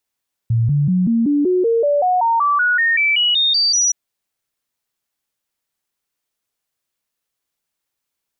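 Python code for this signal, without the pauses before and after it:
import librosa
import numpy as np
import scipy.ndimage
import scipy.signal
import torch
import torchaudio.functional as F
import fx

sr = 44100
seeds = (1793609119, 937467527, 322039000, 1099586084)

y = fx.stepped_sweep(sr, from_hz=115.0, direction='up', per_octave=3, tones=18, dwell_s=0.19, gap_s=0.0, level_db=-12.5)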